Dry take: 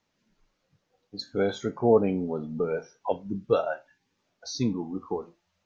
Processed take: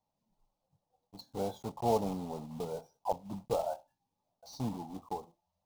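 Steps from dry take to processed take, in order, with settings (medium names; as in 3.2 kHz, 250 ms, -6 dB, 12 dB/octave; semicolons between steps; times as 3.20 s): block-companded coder 3-bit; FFT filter 150 Hz 0 dB, 390 Hz -8 dB, 840 Hz +7 dB, 1.6 kHz -21 dB, 3.9 kHz -9 dB; trim -6.5 dB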